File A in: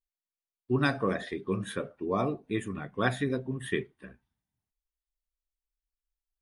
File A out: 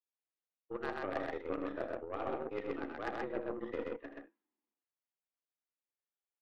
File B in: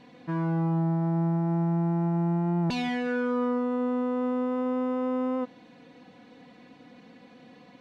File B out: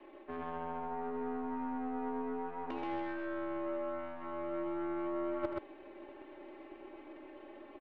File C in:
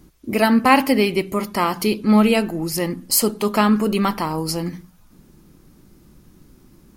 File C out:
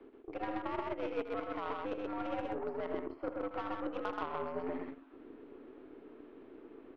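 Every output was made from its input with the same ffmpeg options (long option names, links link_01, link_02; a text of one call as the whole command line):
ffmpeg -i in.wav -filter_complex "[0:a]acrossover=split=430|1500[link_01][link_02][link_03];[link_01]acompressor=threshold=-33dB:ratio=4[link_04];[link_02]acompressor=threshold=-28dB:ratio=4[link_05];[link_03]acompressor=threshold=-43dB:ratio=4[link_06];[link_04][link_05][link_06]amix=inputs=3:normalize=0,highpass=frequency=180:width_type=q:width=0.5412,highpass=frequency=180:width_type=q:width=1.307,lowpass=frequency=3200:width_type=q:width=0.5176,lowpass=frequency=3200:width_type=q:width=0.7071,lowpass=frequency=3200:width_type=q:width=1.932,afreqshift=89,areverse,acompressor=threshold=-40dB:ratio=8,areverse,aeval=exprs='0.0251*(cos(1*acos(clip(val(0)/0.0251,-1,1)))-cos(1*PI/2))+0.00631*(cos(3*acos(clip(val(0)/0.0251,-1,1)))-cos(3*PI/2))+0.00126*(cos(4*acos(clip(val(0)/0.0251,-1,1)))-cos(4*PI/2))+0.000501*(cos(5*acos(clip(val(0)/0.0251,-1,1)))-cos(5*PI/2))':channel_layout=same,highshelf=frequency=2500:gain=-10,aecho=1:1:78.72|128.3:0.316|0.794,volume=7.5dB" out.wav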